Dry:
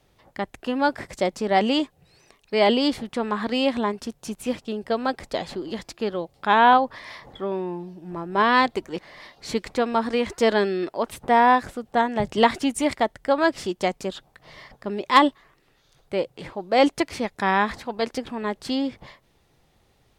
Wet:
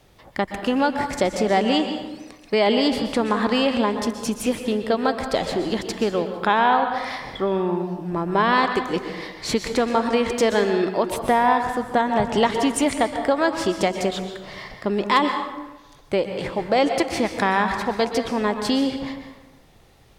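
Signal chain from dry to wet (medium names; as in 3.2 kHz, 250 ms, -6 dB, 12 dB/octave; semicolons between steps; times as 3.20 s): compression 3:1, threshold -26 dBFS, peak gain reduction 12.5 dB; plate-style reverb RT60 1.1 s, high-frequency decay 0.6×, pre-delay 110 ms, DRR 6 dB; trim +7.5 dB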